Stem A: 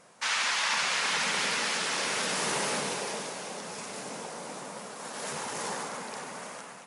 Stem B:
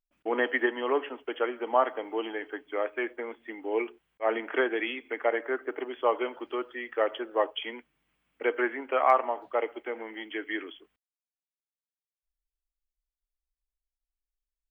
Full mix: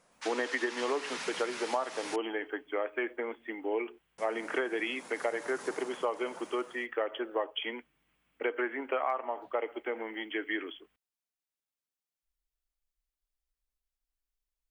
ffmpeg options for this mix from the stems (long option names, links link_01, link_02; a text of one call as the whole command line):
ffmpeg -i stem1.wav -i stem2.wav -filter_complex "[0:a]volume=-10.5dB,asplit=3[link_01][link_02][link_03];[link_01]atrim=end=2.16,asetpts=PTS-STARTPTS,afade=type=out:start_time=2.156:duration=0.004:curve=hsin[link_04];[link_02]atrim=start=2.16:end=4.18,asetpts=PTS-STARTPTS,volume=0[link_05];[link_03]atrim=start=4.18,asetpts=PTS-STARTPTS,afade=type=in:duration=0.004:curve=hsin[link_06];[link_04][link_05][link_06]concat=n=3:v=0:a=1[link_07];[1:a]volume=1dB[link_08];[link_07][link_08]amix=inputs=2:normalize=0,acompressor=threshold=-28dB:ratio=6" out.wav